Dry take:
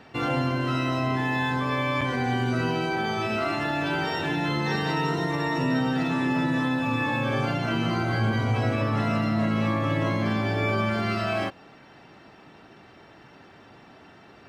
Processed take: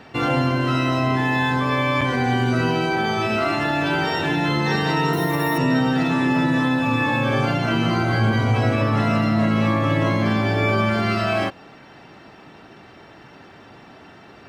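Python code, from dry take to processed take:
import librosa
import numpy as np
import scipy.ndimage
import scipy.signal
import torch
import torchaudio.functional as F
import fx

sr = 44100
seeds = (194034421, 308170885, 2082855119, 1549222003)

y = fx.resample_bad(x, sr, factor=3, down='none', up='hold', at=(5.13, 5.58))
y = F.gain(torch.from_numpy(y), 5.5).numpy()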